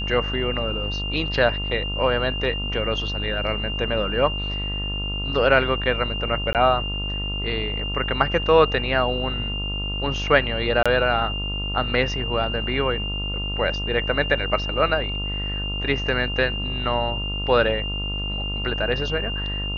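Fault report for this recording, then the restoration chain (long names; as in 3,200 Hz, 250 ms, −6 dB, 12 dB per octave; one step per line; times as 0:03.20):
mains buzz 50 Hz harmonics 28 −29 dBFS
whistle 2,800 Hz −28 dBFS
0:06.53–0:06.55: drop-out 18 ms
0:10.83–0:10.86: drop-out 26 ms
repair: hum removal 50 Hz, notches 28
notch filter 2,800 Hz, Q 30
repair the gap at 0:06.53, 18 ms
repair the gap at 0:10.83, 26 ms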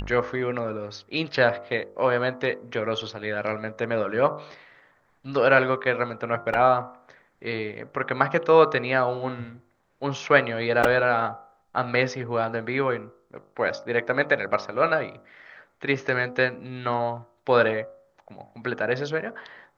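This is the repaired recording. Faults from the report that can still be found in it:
none of them is left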